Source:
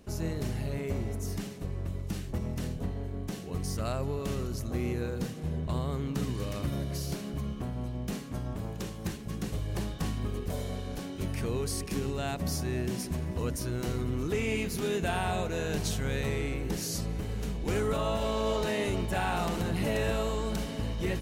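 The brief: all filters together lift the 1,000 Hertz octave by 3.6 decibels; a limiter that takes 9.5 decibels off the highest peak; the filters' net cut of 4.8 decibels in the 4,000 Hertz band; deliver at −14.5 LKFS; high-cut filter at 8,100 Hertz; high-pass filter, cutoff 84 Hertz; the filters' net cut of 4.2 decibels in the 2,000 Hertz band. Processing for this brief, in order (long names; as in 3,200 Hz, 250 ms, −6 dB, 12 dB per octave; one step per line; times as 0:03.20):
high-pass filter 84 Hz
low-pass filter 8,100 Hz
parametric band 1,000 Hz +6.5 dB
parametric band 2,000 Hz −7 dB
parametric band 4,000 Hz −4 dB
level +22.5 dB
brickwall limiter −5 dBFS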